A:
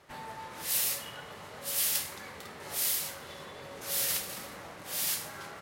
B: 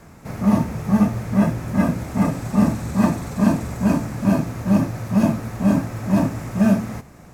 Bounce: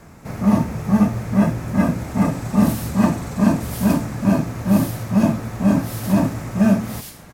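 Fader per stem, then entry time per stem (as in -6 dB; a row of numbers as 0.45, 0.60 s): -6.0, +1.0 dB; 1.95, 0.00 s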